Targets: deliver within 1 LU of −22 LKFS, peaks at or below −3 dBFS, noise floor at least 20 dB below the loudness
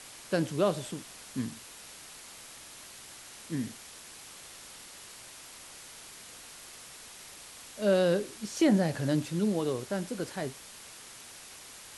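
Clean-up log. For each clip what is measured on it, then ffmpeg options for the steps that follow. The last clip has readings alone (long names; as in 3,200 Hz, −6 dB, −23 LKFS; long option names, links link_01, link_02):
background noise floor −49 dBFS; target noise floor −51 dBFS; integrated loudness −30.5 LKFS; sample peak −14.0 dBFS; target loudness −22.0 LKFS
→ -af "afftdn=noise_reduction=6:noise_floor=-49"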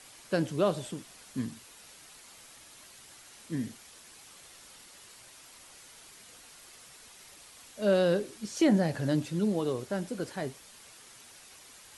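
background noise floor −54 dBFS; integrated loudness −30.5 LKFS; sample peak −14.5 dBFS; target loudness −22.0 LKFS
→ -af "volume=8.5dB"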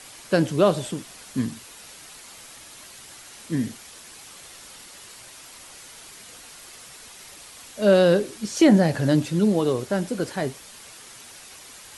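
integrated loudness −22.0 LKFS; sample peak −6.0 dBFS; background noise floor −45 dBFS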